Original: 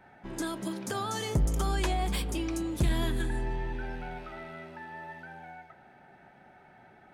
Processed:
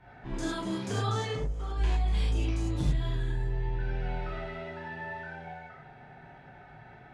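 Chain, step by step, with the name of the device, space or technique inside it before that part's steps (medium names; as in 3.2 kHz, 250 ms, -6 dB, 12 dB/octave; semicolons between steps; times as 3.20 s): jukebox (low-pass 5.4 kHz 12 dB/octave; resonant low shelf 160 Hz +7 dB, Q 1.5; compression 6:1, threshold -31 dBFS, peak gain reduction 16 dB); 1.16–1.77 s: tone controls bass -9 dB, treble -9 dB; gated-style reverb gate 130 ms flat, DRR -7.5 dB; trim -3.5 dB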